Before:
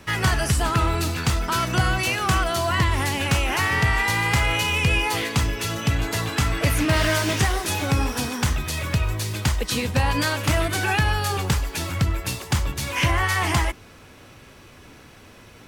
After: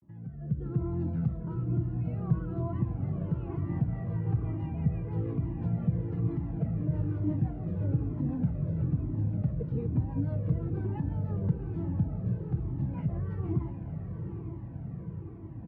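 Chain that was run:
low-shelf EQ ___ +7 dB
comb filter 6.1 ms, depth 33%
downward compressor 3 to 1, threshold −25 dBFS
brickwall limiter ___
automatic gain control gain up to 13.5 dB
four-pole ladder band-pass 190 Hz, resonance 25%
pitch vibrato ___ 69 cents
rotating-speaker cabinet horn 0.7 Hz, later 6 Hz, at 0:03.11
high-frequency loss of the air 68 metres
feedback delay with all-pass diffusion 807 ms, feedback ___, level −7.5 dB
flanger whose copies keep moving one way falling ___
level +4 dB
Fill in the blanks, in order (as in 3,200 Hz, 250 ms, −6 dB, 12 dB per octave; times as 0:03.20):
200 Hz, −17 dBFS, 0.38 Hz, 68%, 1.1 Hz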